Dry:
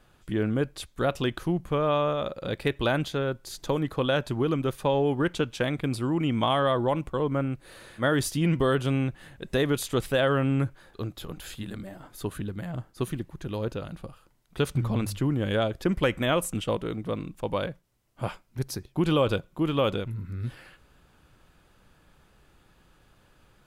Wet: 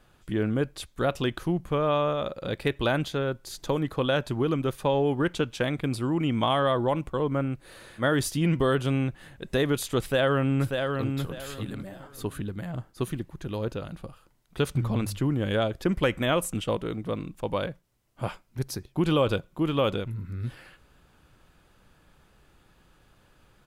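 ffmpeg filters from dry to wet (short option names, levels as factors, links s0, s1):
-filter_complex "[0:a]asplit=2[s0][s1];[s1]afade=t=in:st=10.01:d=0.01,afade=t=out:st=11.05:d=0.01,aecho=0:1:590|1180|1770:0.562341|0.140585|0.0351463[s2];[s0][s2]amix=inputs=2:normalize=0"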